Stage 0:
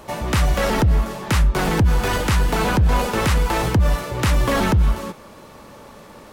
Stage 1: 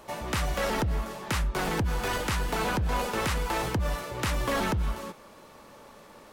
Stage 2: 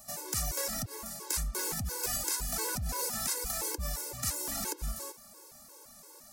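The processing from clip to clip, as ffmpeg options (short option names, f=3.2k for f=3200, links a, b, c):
-af "equalizer=f=78:w=0.33:g=-6,volume=-7dB"
-af "alimiter=limit=-21dB:level=0:latency=1:release=121,aexciter=amount=9.3:drive=3.4:freq=4.6k,afftfilt=real='re*gt(sin(2*PI*2.9*pts/sr)*(1-2*mod(floor(b*sr/1024/280),2)),0)':imag='im*gt(sin(2*PI*2.9*pts/sr)*(1-2*mod(floor(b*sr/1024/280),2)),0)':win_size=1024:overlap=0.75,volume=-6dB"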